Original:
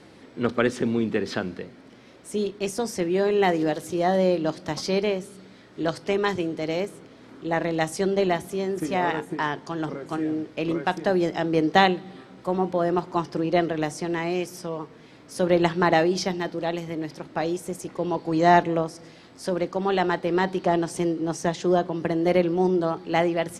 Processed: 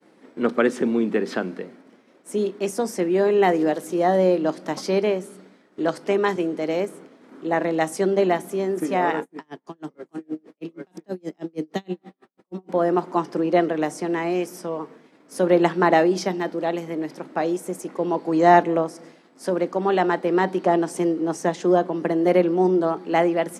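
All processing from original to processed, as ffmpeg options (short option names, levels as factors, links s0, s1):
-filter_complex "[0:a]asettb=1/sr,asplit=3[s0][s1][s2];[s0]atrim=end=9.224[s3];[s1]atrim=start=9.22:end=12.69,asetpts=PTS-STARTPTS,afade=t=in:d=0.004:c=qsin,afade=t=out:st=3.466:d=0.004:c=qsin,bandreject=f=1500:w=20,acrossover=split=350|3000[s4][s5][s6];[s5]acompressor=threshold=0.0141:ratio=3:attack=3.2:release=140:knee=2.83:detection=peak[s7];[s4][s7][s6]amix=inputs=3:normalize=0,aeval=exprs='val(0)*pow(10,-38*(0.5-0.5*cos(2*PI*6.3*n/s))/20)':c=same[s8];[s2]atrim=start=12.686[s9];[s3][s8]acrossfade=d=0.004:c1=hsin:c2=qsin[s10];[s10][s9]acrossfade=d=0.004:c1=qsin:c2=hsin,highpass=f=190:w=0.5412,highpass=f=190:w=1.3066,equalizer=f=4100:t=o:w=1.6:g=-7.5,agate=range=0.0224:threshold=0.00631:ratio=3:detection=peak,volume=1.5"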